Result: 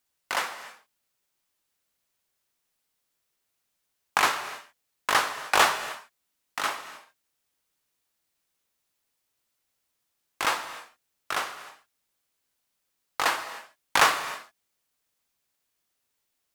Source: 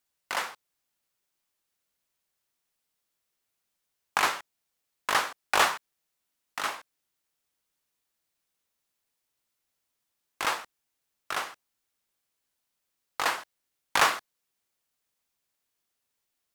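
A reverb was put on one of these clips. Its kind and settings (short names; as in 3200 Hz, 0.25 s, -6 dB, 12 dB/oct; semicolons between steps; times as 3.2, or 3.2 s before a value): non-linear reverb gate 0.33 s flat, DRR 11 dB; gain +2.5 dB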